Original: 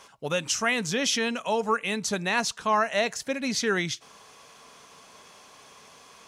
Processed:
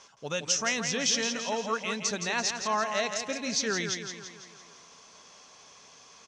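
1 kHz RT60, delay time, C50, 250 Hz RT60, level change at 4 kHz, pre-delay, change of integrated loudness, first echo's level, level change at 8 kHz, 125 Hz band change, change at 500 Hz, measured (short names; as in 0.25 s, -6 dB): none, 0.168 s, none, none, -0.5 dB, none, -2.5 dB, -7.5 dB, +2.0 dB, -5.0 dB, -4.5 dB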